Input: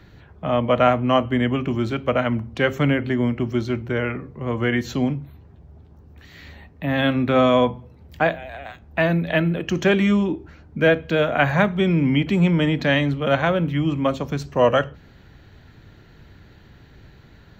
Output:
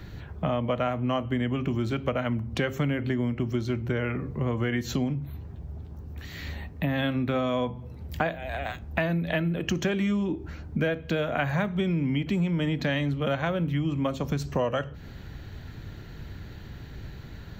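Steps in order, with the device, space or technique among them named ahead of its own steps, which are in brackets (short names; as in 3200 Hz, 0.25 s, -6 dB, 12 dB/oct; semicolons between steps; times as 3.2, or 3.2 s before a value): ASMR close-microphone chain (low shelf 190 Hz +6 dB; compressor 6:1, threshold -27 dBFS, peak gain reduction 16 dB; high shelf 6300 Hz +7.5 dB); gain +2.5 dB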